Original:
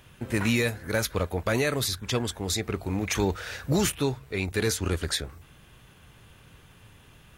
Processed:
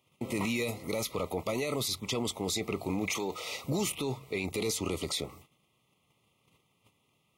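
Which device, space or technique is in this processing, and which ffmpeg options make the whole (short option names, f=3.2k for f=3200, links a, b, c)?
PA system with an anti-feedback notch: -filter_complex "[0:a]highpass=160,asuperstop=centerf=1600:order=12:qfactor=2.5,alimiter=level_in=0.5dB:limit=-24dB:level=0:latency=1:release=23,volume=-0.5dB,agate=range=-18dB:threshold=-53dB:ratio=16:detection=peak,asettb=1/sr,asplit=3[a][b][c];[a]atrim=end=3.154[d];[b]atrim=start=3.15:end=3.64,asetpts=PTS-STARTPTS,afade=t=in:d=0.004:c=qsin,afade=t=out:st=0.486:d=0.004:c=qsin,highpass=f=280:p=1[e];[c]atrim=start=3.636[f];[d][e]acrossfade=d=0.004:c1=hsin:c2=qsin[g];[g][f]acrossfade=d=0.004:c1=qsin:c2=hsin,volume=2dB"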